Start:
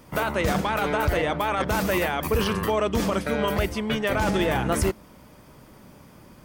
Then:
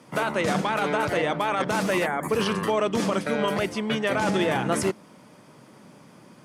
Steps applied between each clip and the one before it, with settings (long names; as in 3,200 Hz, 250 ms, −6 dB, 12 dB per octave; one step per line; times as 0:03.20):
low-pass filter 11,000 Hz 24 dB per octave
gain on a spectral selection 0:02.06–0:02.29, 2,300–6,500 Hz −18 dB
high-pass filter 130 Hz 24 dB per octave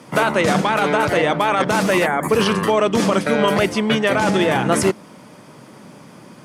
speech leveller 0.5 s
level +7.5 dB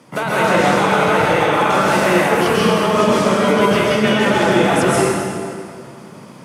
dense smooth reverb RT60 2.1 s, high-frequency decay 0.8×, pre-delay 115 ms, DRR −7.5 dB
level −5 dB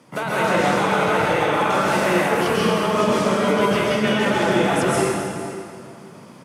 single-tap delay 467 ms −16.5 dB
level −4.5 dB